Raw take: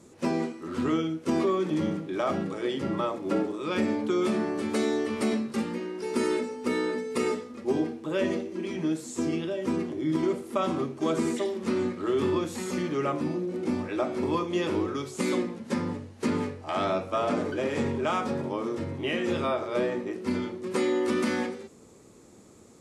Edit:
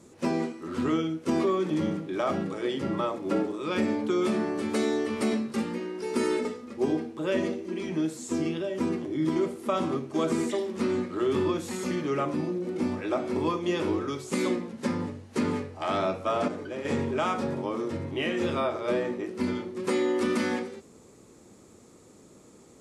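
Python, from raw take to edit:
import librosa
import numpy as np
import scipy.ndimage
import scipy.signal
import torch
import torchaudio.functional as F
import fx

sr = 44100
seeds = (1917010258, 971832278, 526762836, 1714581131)

y = fx.edit(x, sr, fx.cut(start_s=6.45, length_s=0.87),
    fx.clip_gain(start_s=17.35, length_s=0.37, db=-6.5), tone=tone)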